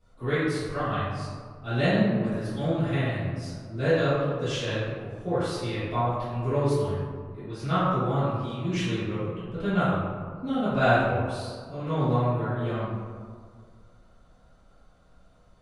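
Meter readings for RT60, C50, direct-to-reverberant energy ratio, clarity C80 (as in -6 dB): 1.9 s, -3.5 dB, -15.0 dB, 0.0 dB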